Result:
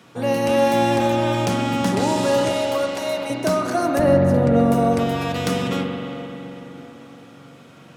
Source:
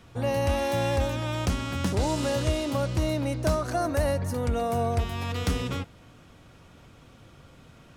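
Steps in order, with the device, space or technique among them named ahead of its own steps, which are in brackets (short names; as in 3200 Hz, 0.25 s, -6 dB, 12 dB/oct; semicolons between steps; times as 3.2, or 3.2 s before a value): 2.51–3.3 HPF 530 Hz 24 dB/oct; HPF 150 Hz 24 dB/oct; 3.99–4.72 tilt -3 dB/oct; dub delay into a spring reverb (darkening echo 0.33 s, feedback 70%, low-pass 2800 Hz, level -15.5 dB; spring tank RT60 3 s, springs 43 ms, chirp 60 ms, DRR 2.5 dB); gain +5.5 dB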